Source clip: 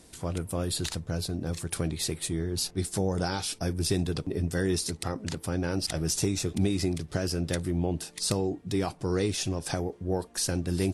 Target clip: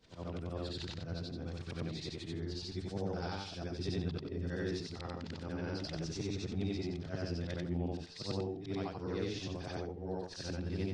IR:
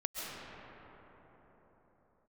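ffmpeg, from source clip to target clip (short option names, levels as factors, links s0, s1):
-af "afftfilt=real='re':imag='-im':win_size=8192:overlap=0.75,lowpass=f=4900:w=0.5412,lowpass=f=4900:w=1.3066,volume=0.596"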